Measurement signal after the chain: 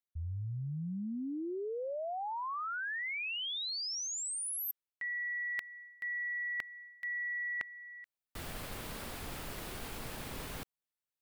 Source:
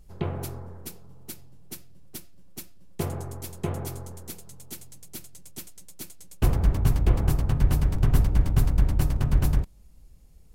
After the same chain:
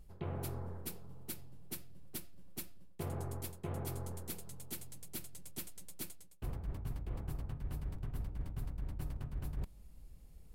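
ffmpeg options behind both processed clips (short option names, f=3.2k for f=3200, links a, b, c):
-af "equalizer=f=6.2k:t=o:w=0.7:g=-5,areverse,acompressor=threshold=-34dB:ratio=10,areverse,volume=-2.5dB"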